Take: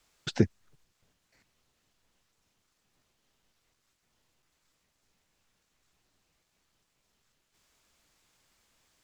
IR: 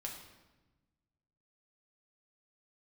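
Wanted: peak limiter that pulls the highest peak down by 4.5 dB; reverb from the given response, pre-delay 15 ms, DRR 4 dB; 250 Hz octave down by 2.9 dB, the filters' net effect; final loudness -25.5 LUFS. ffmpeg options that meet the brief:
-filter_complex "[0:a]equalizer=f=250:t=o:g=-4,alimiter=limit=-14dB:level=0:latency=1,asplit=2[a][b];[1:a]atrim=start_sample=2205,adelay=15[c];[b][c]afir=irnorm=-1:irlink=0,volume=-2.5dB[d];[a][d]amix=inputs=2:normalize=0,volume=10.5dB"

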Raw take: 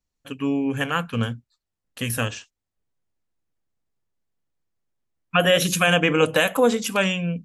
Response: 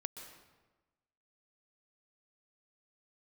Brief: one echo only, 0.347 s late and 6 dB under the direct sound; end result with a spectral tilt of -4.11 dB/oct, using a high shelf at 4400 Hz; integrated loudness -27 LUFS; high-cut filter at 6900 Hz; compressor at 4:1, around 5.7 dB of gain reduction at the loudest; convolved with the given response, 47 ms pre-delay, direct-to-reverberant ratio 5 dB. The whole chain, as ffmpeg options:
-filter_complex "[0:a]lowpass=6.9k,highshelf=f=4.4k:g=-5,acompressor=threshold=-20dB:ratio=4,aecho=1:1:347:0.501,asplit=2[a][b];[1:a]atrim=start_sample=2205,adelay=47[c];[b][c]afir=irnorm=-1:irlink=0,volume=-3dB[d];[a][d]amix=inputs=2:normalize=0,volume=-3dB"

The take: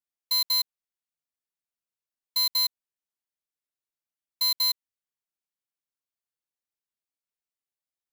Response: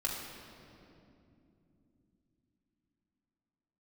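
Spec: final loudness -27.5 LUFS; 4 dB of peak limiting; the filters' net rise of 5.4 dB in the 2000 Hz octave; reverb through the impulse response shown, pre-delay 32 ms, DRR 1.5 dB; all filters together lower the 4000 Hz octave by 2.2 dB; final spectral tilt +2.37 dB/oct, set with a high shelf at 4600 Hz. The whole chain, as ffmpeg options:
-filter_complex "[0:a]equalizer=f=2k:t=o:g=6,equalizer=f=4k:t=o:g=-5.5,highshelf=f=4.6k:g=5,alimiter=limit=-22.5dB:level=0:latency=1,asplit=2[a][b];[1:a]atrim=start_sample=2205,adelay=32[c];[b][c]afir=irnorm=-1:irlink=0,volume=-5.5dB[d];[a][d]amix=inputs=2:normalize=0,volume=0.5dB"

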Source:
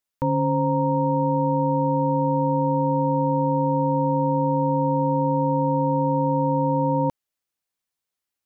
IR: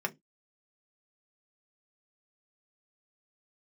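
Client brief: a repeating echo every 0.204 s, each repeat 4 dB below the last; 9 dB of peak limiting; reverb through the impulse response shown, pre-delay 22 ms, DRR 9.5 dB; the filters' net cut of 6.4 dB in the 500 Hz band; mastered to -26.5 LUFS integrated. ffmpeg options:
-filter_complex "[0:a]equalizer=f=500:t=o:g=-6.5,alimiter=limit=-23.5dB:level=0:latency=1,aecho=1:1:204|408|612|816|1020|1224|1428|1632|1836:0.631|0.398|0.25|0.158|0.0994|0.0626|0.0394|0.0249|0.0157,asplit=2[a][b];[1:a]atrim=start_sample=2205,adelay=22[c];[b][c]afir=irnorm=-1:irlink=0,volume=-15dB[d];[a][d]amix=inputs=2:normalize=0,volume=-1.5dB"

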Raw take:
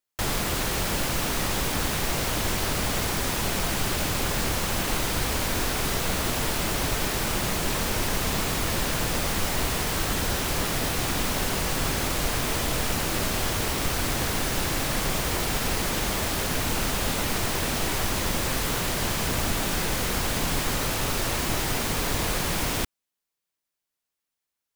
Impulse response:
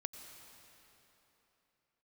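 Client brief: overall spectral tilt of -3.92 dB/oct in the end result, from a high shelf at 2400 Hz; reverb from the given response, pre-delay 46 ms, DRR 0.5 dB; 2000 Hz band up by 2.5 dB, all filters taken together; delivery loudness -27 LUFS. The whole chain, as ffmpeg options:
-filter_complex "[0:a]equalizer=f=2k:t=o:g=6,highshelf=f=2.4k:g=-6,asplit=2[a][b];[1:a]atrim=start_sample=2205,adelay=46[c];[b][c]afir=irnorm=-1:irlink=0,volume=1.5dB[d];[a][d]amix=inputs=2:normalize=0,volume=-3dB"

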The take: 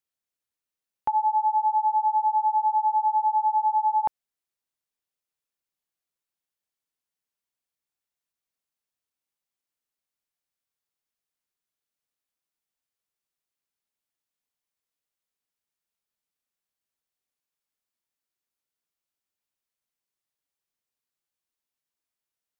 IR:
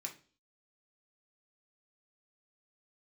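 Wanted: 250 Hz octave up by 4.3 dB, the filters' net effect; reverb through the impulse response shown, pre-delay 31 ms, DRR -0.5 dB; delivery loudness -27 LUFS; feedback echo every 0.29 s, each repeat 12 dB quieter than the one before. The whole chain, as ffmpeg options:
-filter_complex "[0:a]equalizer=f=250:t=o:g=5.5,aecho=1:1:290|580|870:0.251|0.0628|0.0157,asplit=2[a][b];[1:a]atrim=start_sample=2205,adelay=31[c];[b][c]afir=irnorm=-1:irlink=0,volume=2.5dB[d];[a][d]amix=inputs=2:normalize=0,volume=-4dB"

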